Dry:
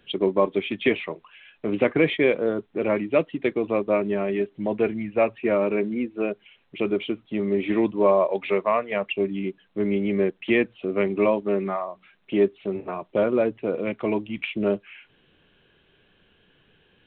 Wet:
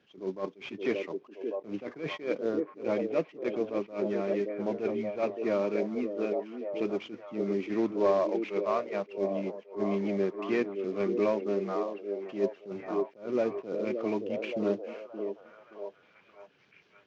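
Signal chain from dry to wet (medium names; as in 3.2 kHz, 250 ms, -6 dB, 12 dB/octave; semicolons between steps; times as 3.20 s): CVSD coder 32 kbps; high-pass 130 Hz 12 dB/octave; treble shelf 3.1 kHz -9 dB; repeats whose band climbs or falls 572 ms, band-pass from 370 Hz, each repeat 0.7 oct, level -4 dB; attacks held to a fixed rise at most 170 dB/s; trim -6 dB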